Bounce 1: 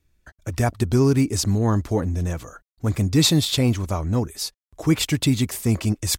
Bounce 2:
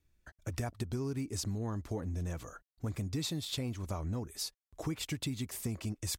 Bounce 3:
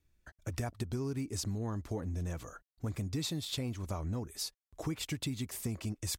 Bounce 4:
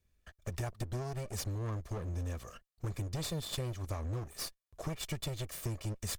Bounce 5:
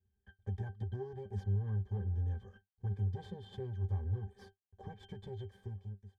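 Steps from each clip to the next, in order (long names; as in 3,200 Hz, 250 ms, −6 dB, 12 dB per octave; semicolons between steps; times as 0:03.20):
downward compressor, threshold −26 dBFS, peak gain reduction 13 dB; level −7.5 dB
no processing that can be heard
lower of the sound and its delayed copy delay 1.7 ms
fade-out on the ending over 0.88 s; resonances in every octave G, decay 0.13 s; level +6.5 dB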